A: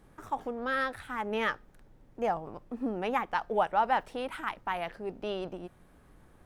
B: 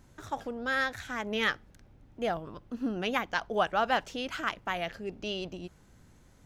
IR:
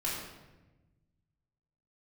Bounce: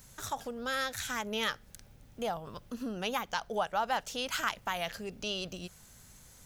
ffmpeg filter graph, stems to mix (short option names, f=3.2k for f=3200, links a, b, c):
-filter_complex "[0:a]lowpass=f=1.2k:p=1,volume=-6dB,asplit=2[a][b];[1:a]crystalizer=i=5.5:c=0,volume=-1.5dB[c];[b]apad=whole_len=284627[d];[c][d]sidechaincompress=threshold=-41dB:ratio=8:attack=8.5:release=333[e];[a][e]amix=inputs=2:normalize=0,equalizer=f=320:t=o:w=0.59:g=-8.5"